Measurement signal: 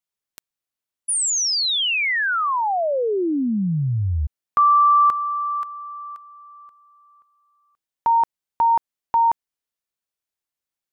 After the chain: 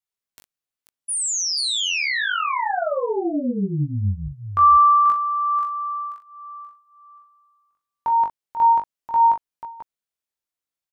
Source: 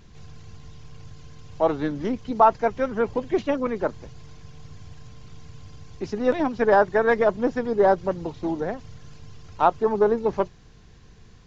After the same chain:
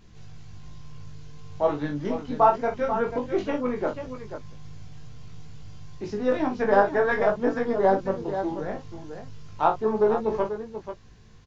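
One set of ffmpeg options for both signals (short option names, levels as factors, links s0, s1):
-filter_complex "[0:a]asplit=2[s0][s1];[s1]aecho=0:1:41|488:0.376|0.335[s2];[s0][s2]amix=inputs=2:normalize=0,flanger=delay=18.5:depth=2.4:speed=0.19"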